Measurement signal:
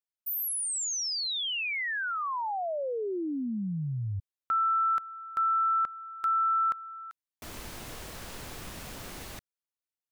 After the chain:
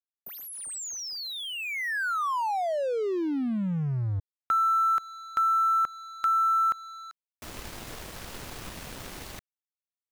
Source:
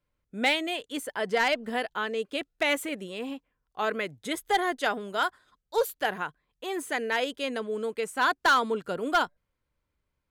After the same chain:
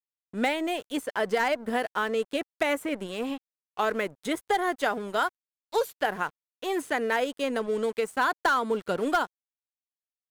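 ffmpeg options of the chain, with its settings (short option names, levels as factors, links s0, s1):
-filter_complex "[0:a]aeval=exprs='sgn(val(0))*max(abs(val(0))-0.00422,0)':c=same,acrossover=split=1900|6400[s0][s1][s2];[s0]acompressor=threshold=0.0398:ratio=4[s3];[s1]acompressor=threshold=0.00501:ratio=4[s4];[s2]acompressor=threshold=0.00282:ratio=4[s5];[s3][s4][s5]amix=inputs=3:normalize=0,volume=1.88"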